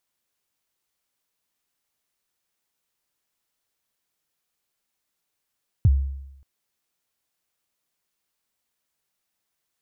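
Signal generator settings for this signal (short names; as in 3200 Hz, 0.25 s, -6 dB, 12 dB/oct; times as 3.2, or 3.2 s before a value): kick drum length 0.58 s, from 130 Hz, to 68 Hz, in 41 ms, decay 0.87 s, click off, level -10.5 dB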